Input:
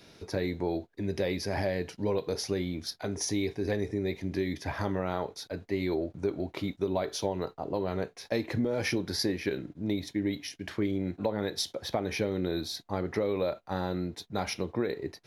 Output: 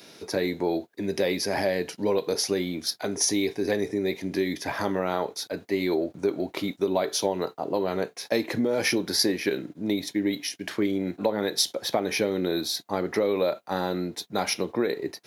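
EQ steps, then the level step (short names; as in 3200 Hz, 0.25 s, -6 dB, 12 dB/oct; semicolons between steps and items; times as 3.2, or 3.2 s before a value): HPF 200 Hz 12 dB/oct; high shelf 7000 Hz +8.5 dB; +5.5 dB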